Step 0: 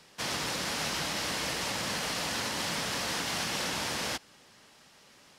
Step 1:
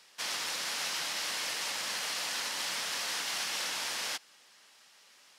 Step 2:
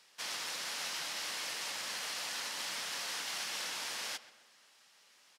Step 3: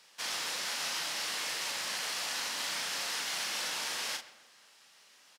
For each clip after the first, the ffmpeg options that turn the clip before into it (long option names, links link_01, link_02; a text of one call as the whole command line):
ffmpeg -i in.wav -af "highpass=frequency=1400:poles=1" out.wav
ffmpeg -i in.wav -filter_complex "[0:a]asplit=2[link_01][link_02];[link_02]adelay=131,lowpass=frequency=2900:poles=1,volume=-15dB,asplit=2[link_03][link_04];[link_04]adelay=131,lowpass=frequency=2900:poles=1,volume=0.51,asplit=2[link_05][link_06];[link_06]adelay=131,lowpass=frequency=2900:poles=1,volume=0.51,asplit=2[link_07][link_08];[link_08]adelay=131,lowpass=frequency=2900:poles=1,volume=0.51,asplit=2[link_09][link_10];[link_10]adelay=131,lowpass=frequency=2900:poles=1,volume=0.51[link_11];[link_01][link_03][link_05][link_07][link_09][link_11]amix=inputs=6:normalize=0,volume=-4.5dB" out.wav
ffmpeg -i in.wav -filter_complex "[0:a]asplit=2[link_01][link_02];[link_02]acrusher=bits=4:mode=log:mix=0:aa=0.000001,volume=-8.5dB[link_03];[link_01][link_03]amix=inputs=2:normalize=0,asplit=2[link_04][link_05];[link_05]adelay=38,volume=-5.5dB[link_06];[link_04][link_06]amix=inputs=2:normalize=0" out.wav